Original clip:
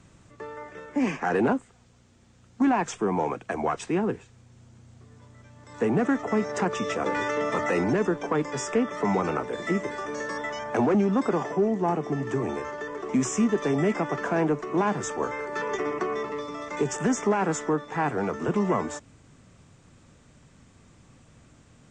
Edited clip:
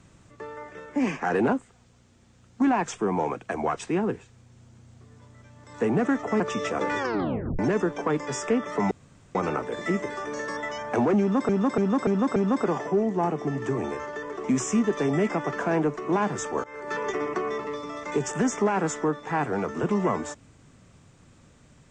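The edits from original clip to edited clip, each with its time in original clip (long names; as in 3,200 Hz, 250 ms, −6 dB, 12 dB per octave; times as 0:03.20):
0:06.40–0:06.65: remove
0:07.23: tape stop 0.61 s
0:09.16: splice in room tone 0.44 s
0:11.01–0:11.30: repeat, 5 plays
0:15.29–0:15.57: fade in, from −19 dB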